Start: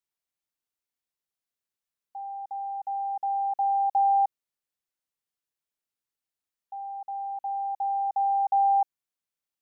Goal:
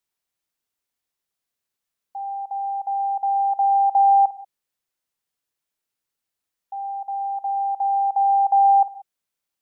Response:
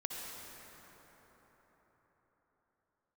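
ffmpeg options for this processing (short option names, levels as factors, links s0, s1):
-filter_complex "[0:a]asplit=2[s0][s1];[1:a]atrim=start_sample=2205,atrim=end_sample=6174,adelay=52[s2];[s1][s2]afir=irnorm=-1:irlink=0,volume=0.266[s3];[s0][s3]amix=inputs=2:normalize=0,volume=2"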